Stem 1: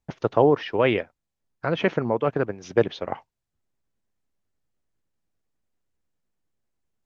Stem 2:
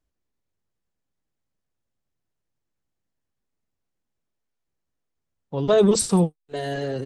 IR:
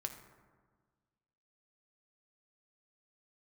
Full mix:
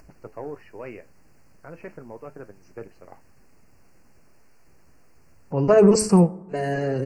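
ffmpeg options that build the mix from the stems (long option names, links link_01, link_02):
-filter_complex "[0:a]asoftclip=type=tanh:threshold=-7dB,flanger=delay=9:depth=5.9:regen=-66:speed=0.37:shape=triangular,volume=-12dB[link_01];[1:a]bandreject=frequency=107.5:width_type=h:width=4,bandreject=frequency=215:width_type=h:width=4,bandreject=frequency=322.5:width_type=h:width=4,bandreject=frequency=430:width_type=h:width=4,bandreject=frequency=537.5:width_type=h:width=4,bandreject=frequency=645:width_type=h:width=4,bandreject=frequency=752.5:width_type=h:width=4,bandreject=frequency=860:width_type=h:width=4,bandreject=frequency=967.5:width_type=h:width=4,bandreject=frequency=1075:width_type=h:width=4,bandreject=frequency=1182.5:width_type=h:width=4,bandreject=frequency=1290:width_type=h:width=4,bandreject=frequency=1397.5:width_type=h:width=4,bandreject=frequency=1505:width_type=h:width=4,bandreject=frequency=1612.5:width_type=h:width=4,bandreject=frequency=1720:width_type=h:width=4,bandreject=frequency=1827.5:width_type=h:width=4,bandreject=frequency=1935:width_type=h:width=4,bandreject=frequency=2042.5:width_type=h:width=4,bandreject=frequency=2150:width_type=h:width=4,acompressor=mode=upward:threshold=-35dB:ratio=2.5,volume=2dB,asplit=2[link_02][link_03];[link_03]volume=-13dB[link_04];[2:a]atrim=start_sample=2205[link_05];[link_04][link_05]afir=irnorm=-1:irlink=0[link_06];[link_01][link_02][link_06]amix=inputs=3:normalize=0,asuperstop=centerf=3500:order=8:qfactor=2.2,highshelf=frequency=5700:gain=-7.5"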